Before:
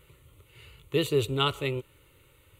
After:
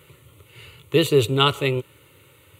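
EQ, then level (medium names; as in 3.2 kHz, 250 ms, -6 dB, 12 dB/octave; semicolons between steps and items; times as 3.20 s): high-pass 87 Hz 24 dB/octave; +8.0 dB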